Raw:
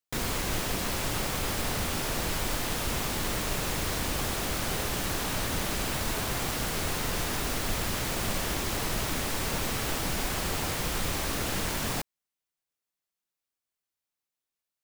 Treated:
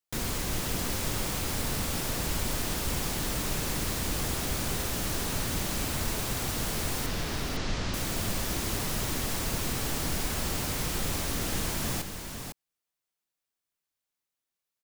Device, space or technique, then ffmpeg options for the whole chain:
one-band saturation: -filter_complex "[0:a]acrossover=split=360|4300[link_01][link_02][link_03];[link_02]asoftclip=type=tanh:threshold=-36dB[link_04];[link_01][link_04][link_03]amix=inputs=3:normalize=0,asettb=1/sr,asplit=3[link_05][link_06][link_07];[link_05]atrim=end=7.064[link_08];[link_06]atrim=start=7.06:end=7.94,asetpts=PTS-STARTPTS,afade=type=in:duration=0.004:curve=qsin,afade=type=out:start_time=0.876:duration=0.004:curve=qsin,lowpass=frequency=5800:width=0.5412,lowpass=frequency=5800:width=1.3066[link_09];[link_07]atrim=start=7.936[link_10];[link_08][link_09]acrossfade=duration=0.004:curve1=hsin:curve2=qsin[link_11];[link_11][link_10]acrossfade=duration=0.004:curve1=qsin:curve2=hsin,aecho=1:1:504:0.447"

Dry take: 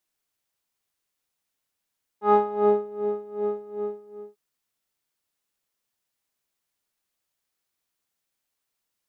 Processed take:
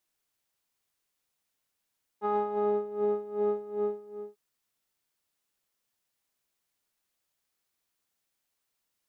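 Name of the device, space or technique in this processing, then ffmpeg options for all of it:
stacked limiters: -af "alimiter=limit=-14dB:level=0:latency=1:release=299,alimiter=limit=-20dB:level=0:latency=1:release=38"

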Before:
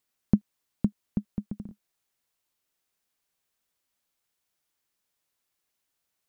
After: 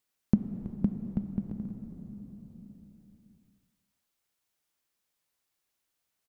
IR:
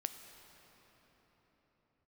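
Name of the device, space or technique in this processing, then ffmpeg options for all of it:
cave: -filter_complex "[0:a]aecho=1:1:325:0.168[link_01];[1:a]atrim=start_sample=2205[link_02];[link_01][link_02]afir=irnorm=-1:irlink=0"

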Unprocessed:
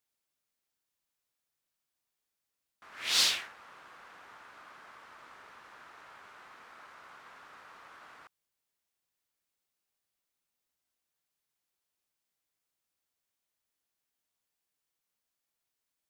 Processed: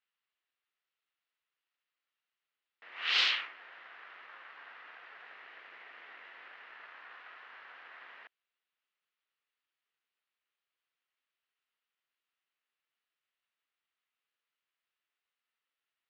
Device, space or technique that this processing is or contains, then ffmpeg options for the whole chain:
voice changer toy: -af "aeval=exprs='val(0)*sin(2*PI*460*n/s+460*0.25/0.34*sin(2*PI*0.34*n/s))':channel_layout=same,highpass=510,equalizer=frequency=600:width_type=q:width=4:gain=-4,equalizer=frequency=850:width_type=q:width=4:gain=-4,equalizer=frequency=1300:width_type=q:width=4:gain=4,equalizer=frequency=1900:width_type=q:width=4:gain=4,equalizer=frequency=2800:width_type=q:width=4:gain=5,lowpass=frequency=3900:width=0.5412,lowpass=frequency=3900:width=1.3066,volume=2.5dB"

